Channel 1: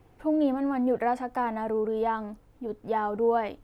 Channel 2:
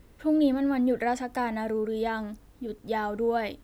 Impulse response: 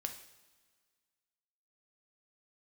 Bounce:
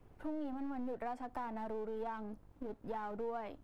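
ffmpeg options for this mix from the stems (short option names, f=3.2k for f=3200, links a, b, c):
-filter_complex "[0:a]acrossover=split=380|3000[a][b][c];[a]acompressor=threshold=-29dB:ratio=6[d];[d][b][c]amix=inputs=3:normalize=0,volume=-9dB,asplit=2[e][f];[1:a]lowpass=f=1.3k:w=0.5412,lowpass=f=1.3k:w=1.3066,aeval=exprs='max(val(0),0)':c=same,volume=-4dB[g];[f]apad=whole_len=160192[h];[g][h]sidechaincompress=threshold=-36dB:ratio=8:attack=10:release=360[i];[e][i]amix=inputs=2:normalize=0,acompressor=threshold=-41dB:ratio=2.5"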